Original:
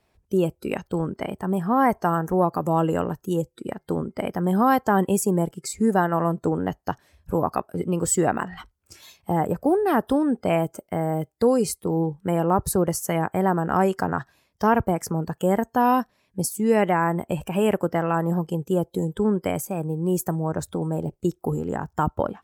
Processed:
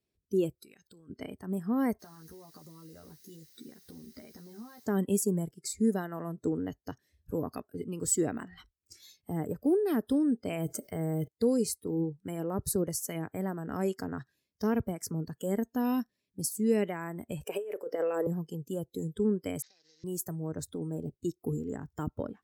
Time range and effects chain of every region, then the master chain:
0:00.58–0:01.10: tilt shelving filter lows −5.5 dB, about 1,200 Hz + downward compressor, threshold −39 dBFS
0:01.99–0:04.85: double-tracking delay 13 ms −2.5 dB + downward compressor 12 to 1, threshold −32 dBFS + background noise white −53 dBFS
0:10.52–0:11.28: notch filter 270 Hz, Q 5.5 + envelope flattener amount 50%
0:17.44–0:18.27: high-pass with resonance 450 Hz, resonance Q 3 + compressor whose output falls as the input rises −20 dBFS, ratio −0.5
0:19.62–0:20.04: variable-slope delta modulation 32 kbit/s + high-pass filter 1,300 Hz + downward compressor 8 to 1, threshold −46 dBFS
whole clip: drawn EQ curve 400 Hz 0 dB, 840 Hz −17 dB, 4,200 Hz −1 dB; noise reduction from a noise print of the clip's start 9 dB; low-shelf EQ 72 Hz −11.5 dB; level −4 dB

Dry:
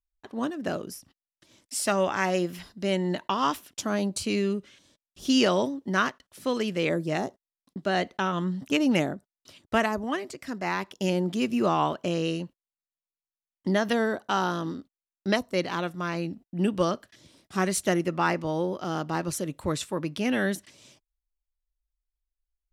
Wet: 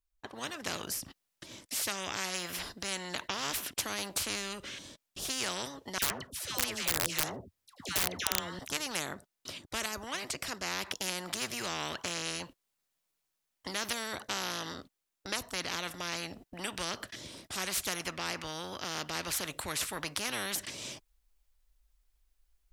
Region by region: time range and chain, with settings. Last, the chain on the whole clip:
0:05.98–0:08.59: all-pass dispersion lows, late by 132 ms, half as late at 920 Hz + wrap-around overflow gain 18.5 dB + parametric band 87 Hz +14.5 dB 1.7 octaves
whole clip: dynamic equaliser 2,000 Hz, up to +4 dB, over −40 dBFS, Q 0.7; automatic gain control gain up to 11.5 dB; every bin compressed towards the loudest bin 4 to 1; level −4.5 dB

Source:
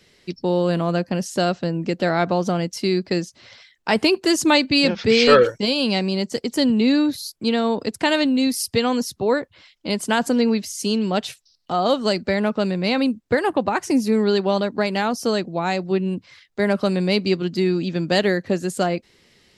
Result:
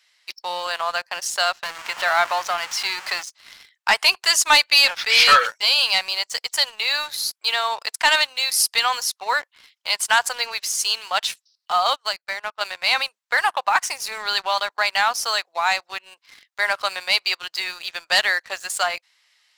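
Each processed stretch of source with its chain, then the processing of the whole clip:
0:01.63–0:03.23: converter with a step at zero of −25.5 dBFS + low-pass filter 3,200 Hz 6 dB per octave + notch filter 510 Hz, Q 14
0:11.90–0:12.61: high-shelf EQ 5,900 Hz −5 dB + expander for the loud parts 2.5 to 1, over −30 dBFS
whole clip: inverse Chebyshev high-pass filter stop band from 260 Hz, stop band 60 dB; leveller curve on the samples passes 2

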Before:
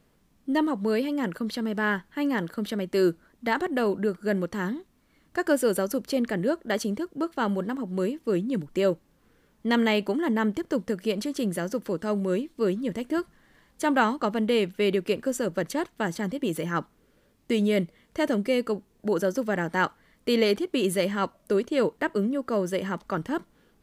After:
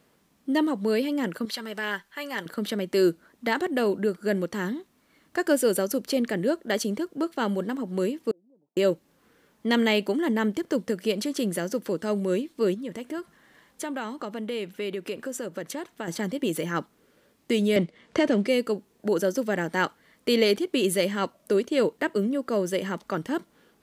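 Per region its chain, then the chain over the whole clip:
0:01.45–0:02.46: parametric band 200 Hz −13.5 dB 2.9 octaves + comb filter 5.1 ms, depth 45%
0:08.31–0:08.77: downward compressor 10 to 1, threshold −31 dBFS + Butterworth low-pass 790 Hz + first difference
0:12.74–0:16.08: notch filter 4,600 Hz, Q 24 + downward compressor 2 to 1, threshold −37 dBFS
0:17.76–0:18.48: leveller curve on the samples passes 1 + high-frequency loss of the air 79 metres + multiband upward and downward compressor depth 70%
whole clip: high-pass filter 260 Hz 6 dB per octave; dynamic equaliser 1,100 Hz, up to −6 dB, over −40 dBFS, Q 0.85; level +4 dB

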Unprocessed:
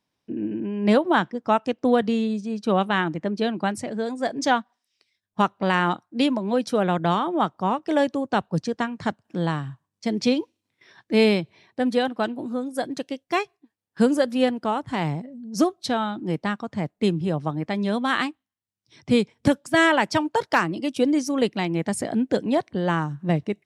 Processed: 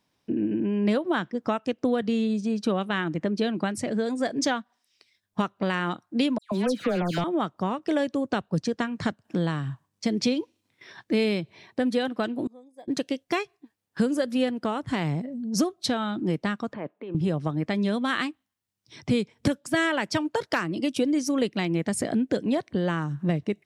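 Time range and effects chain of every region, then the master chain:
0:06.38–0:07.24: hard clipping −16 dBFS + all-pass dispersion lows, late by 137 ms, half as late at 2,400 Hz
0:12.47–0:12.88: de-essing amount 90% + moving average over 31 samples + first difference
0:16.73–0:17.15: compressor whose output falls as the input rises −30 dBFS + loudspeaker in its box 430–2,300 Hz, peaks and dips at 740 Hz −6 dB, 1,400 Hz −5 dB, 2,000 Hz −9 dB
whole clip: downward compressor 3 to 1, threshold −29 dBFS; dynamic equaliser 860 Hz, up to −6 dB, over −47 dBFS, Q 2.2; level +5.5 dB

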